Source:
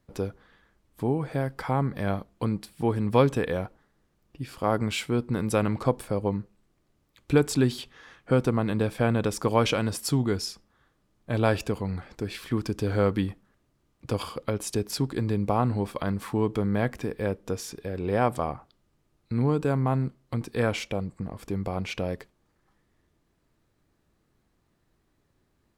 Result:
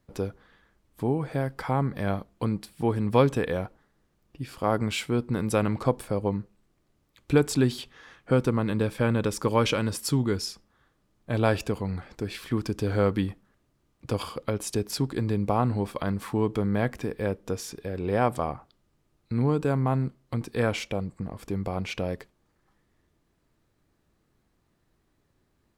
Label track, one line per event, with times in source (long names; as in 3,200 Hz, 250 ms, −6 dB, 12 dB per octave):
8.370000	10.460000	notch filter 710 Hz, Q 5.5